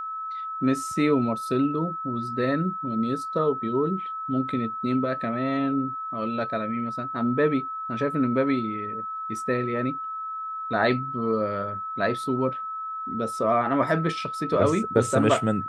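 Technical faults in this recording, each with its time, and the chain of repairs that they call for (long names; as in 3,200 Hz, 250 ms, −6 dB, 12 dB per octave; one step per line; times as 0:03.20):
whistle 1,300 Hz −30 dBFS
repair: notch filter 1,300 Hz, Q 30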